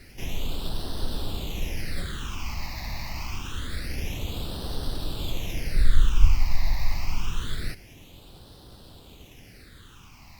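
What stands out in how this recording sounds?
aliases and images of a low sample rate 8,300 Hz, jitter 20%
phaser sweep stages 8, 0.26 Hz, lowest notch 420–2,200 Hz
a quantiser's noise floor 10 bits, dither none
Opus

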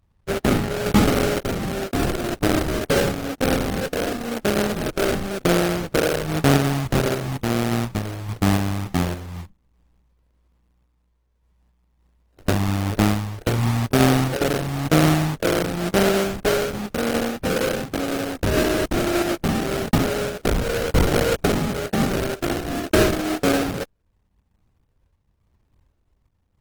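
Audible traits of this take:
phaser sweep stages 4, 0.95 Hz, lowest notch 210–1,400 Hz
aliases and images of a low sample rate 1,000 Hz, jitter 20%
sample-and-hold tremolo
Opus

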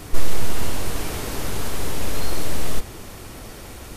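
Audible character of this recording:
background noise floor −39 dBFS
spectral slope −4.0 dB per octave

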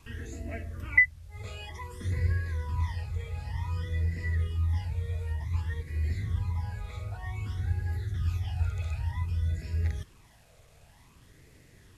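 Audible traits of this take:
phaser sweep stages 12, 0.54 Hz, lowest notch 300–1,100 Hz
a quantiser's noise floor 10 bits, dither none
Ogg Vorbis

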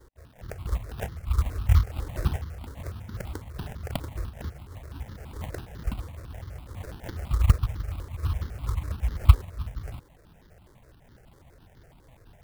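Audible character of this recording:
aliases and images of a low sample rate 1,200 Hz, jitter 20%
notches that jump at a steady rate 12 Hz 690–2,500 Hz

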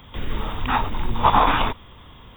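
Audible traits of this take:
background noise floor −46 dBFS
spectral slope −3.0 dB per octave

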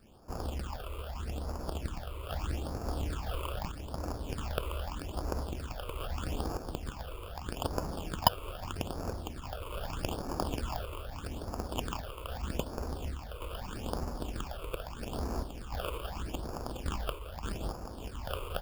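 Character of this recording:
aliases and images of a low sample rate 2,000 Hz, jitter 0%
sample-and-hold tremolo
phaser sweep stages 8, 0.8 Hz, lowest notch 220–3,200 Hz

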